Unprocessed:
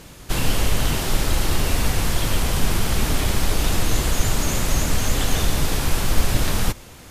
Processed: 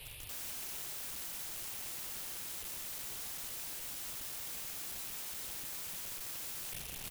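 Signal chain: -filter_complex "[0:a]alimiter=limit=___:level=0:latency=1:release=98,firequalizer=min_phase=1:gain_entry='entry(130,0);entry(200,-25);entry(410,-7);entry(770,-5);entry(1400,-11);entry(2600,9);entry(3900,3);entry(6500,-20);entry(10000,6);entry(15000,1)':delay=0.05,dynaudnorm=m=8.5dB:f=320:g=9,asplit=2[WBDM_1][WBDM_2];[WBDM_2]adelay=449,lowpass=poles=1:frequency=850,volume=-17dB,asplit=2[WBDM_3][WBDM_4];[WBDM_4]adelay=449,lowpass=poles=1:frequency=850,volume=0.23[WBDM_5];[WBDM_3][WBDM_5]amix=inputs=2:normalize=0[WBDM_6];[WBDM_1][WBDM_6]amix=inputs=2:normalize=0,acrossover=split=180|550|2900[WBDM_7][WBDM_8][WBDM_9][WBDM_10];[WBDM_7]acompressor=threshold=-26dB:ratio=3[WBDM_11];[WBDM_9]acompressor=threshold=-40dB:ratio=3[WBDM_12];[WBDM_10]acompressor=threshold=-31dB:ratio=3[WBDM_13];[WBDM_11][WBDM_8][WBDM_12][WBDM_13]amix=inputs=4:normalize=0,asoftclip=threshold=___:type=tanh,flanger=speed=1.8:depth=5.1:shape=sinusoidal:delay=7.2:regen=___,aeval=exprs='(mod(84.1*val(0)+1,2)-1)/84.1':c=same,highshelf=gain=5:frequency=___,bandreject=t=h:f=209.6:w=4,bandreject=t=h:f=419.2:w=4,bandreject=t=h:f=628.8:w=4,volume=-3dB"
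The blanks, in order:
-15dB, -23dB, -45, 6700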